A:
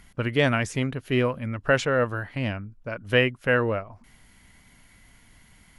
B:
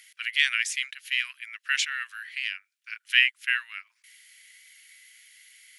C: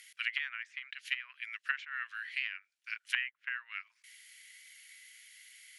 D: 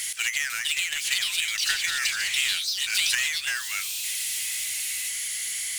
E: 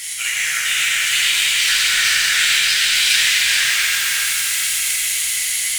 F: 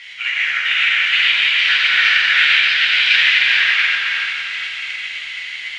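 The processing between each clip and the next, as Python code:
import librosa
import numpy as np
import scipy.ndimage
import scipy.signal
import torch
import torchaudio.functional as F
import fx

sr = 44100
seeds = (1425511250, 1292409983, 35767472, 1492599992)

y1 = scipy.signal.sosfilt(scipy.signal.butter(6, 1900.0, 'highpass', fs=sr, output='sos'), x)
y1 = y1 * 10.0 ** (6.5 / 20.0)
y2 = fx.env_lowpass_down(y1, sr, base_hz=1000.0, full_db=-24.5)
y2 = y2 * 10.0 ** (-2.0 / 20.0)
y3 = fx.echo_pitch(y2, sr, ms=498, semitones=4, count=3, db_per_echo=-3.0)
y3 = fx.power_curve(y3, sr, exponent=0.5)
y3 = fx.graphic_eq_10(y3, sr, hz=(250, 500, 1000, 2000, 8000), db=(-10, -7, -6, -3, 9))
y3 = y3 * 10.0 ** (2.0 / 20.0)
y4 = y3 + 10.0 ** (-4.5 / 20.0) * np.pad(y3, (int(434 * sr / 1000.0), 0))[:len(y3)]
y4 = fx.rev_plate(y4, sr, seeds[0], rt60_s=4.2, hf_ratio=0.85, predelay_ms=0, drr_db=-9.0)
y5 = scipy.signal.sosfilt(scipy.signal.butter(4, 2900.0, 'lowpass', fs=sr, output='sos'), y4)
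y5 = fx.tilt_eq(y5, sr, slope=2.5)
y5 = fx.upward_expand(y5, sr, threshold_db=-26.0, expansion=1.5)
y5 = y5 * 10.0 ** (3.5 / 20.0)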